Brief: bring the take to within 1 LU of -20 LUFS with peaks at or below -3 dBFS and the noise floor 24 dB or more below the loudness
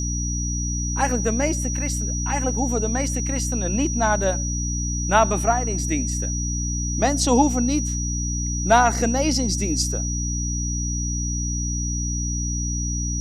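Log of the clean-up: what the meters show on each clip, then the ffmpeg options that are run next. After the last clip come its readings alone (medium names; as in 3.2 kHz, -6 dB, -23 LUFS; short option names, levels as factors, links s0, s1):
hum 60 Hz; highest harmonic 300 Hz; hum level -23 dBFS; steady tone 5.8 kHz; tone level -28 dBFS; loudness -22.5 LUFS; peak level -4.0 dBFS; loudness target -20.0 LUFS
-> -af "bandreject=f=60:t=h:w=4,bandreject=f=120:t=h:w=4,bandreject=f=180:t=h:w=4,bandreject=f=240:t=h:w=4,bandreject=f=300:t=h:w=4"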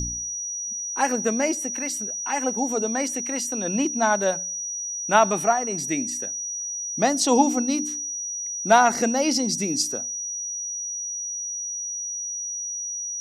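hum not found; steady tone 5.8 kHz; tone level -28 dBFS
-> -af "bandreject=f=5800:w=30"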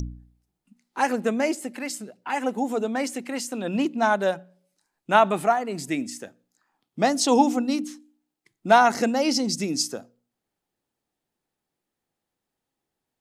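steady tone not found; loudness -23.5 LUFS; peak level -5.0 dBFS; loudness target -20.0 LUFS
-> -af "volume=1.5,alimiter=limit=0.708:level=0:latency=1"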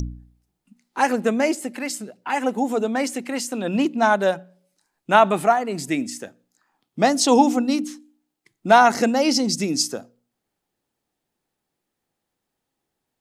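loudness -20.5 LUFS; peak level -3.0 dBFS; noise floor -81 dBFS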